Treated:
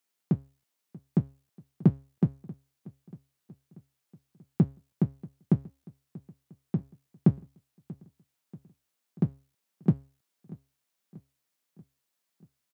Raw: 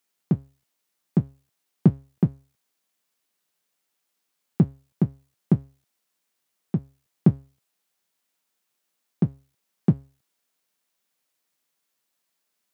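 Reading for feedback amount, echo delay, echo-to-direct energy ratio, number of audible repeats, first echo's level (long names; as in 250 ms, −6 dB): 58%, 636 ms, −19.0 dB, 3, −21.0 dB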